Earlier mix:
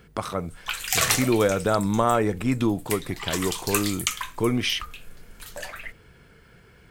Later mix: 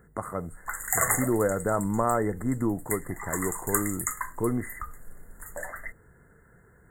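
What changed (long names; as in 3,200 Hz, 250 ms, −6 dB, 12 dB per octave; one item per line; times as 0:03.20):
speech −4.0 dB
master: add linear-phase brick-wall band-stop 2,100–6,700 Hz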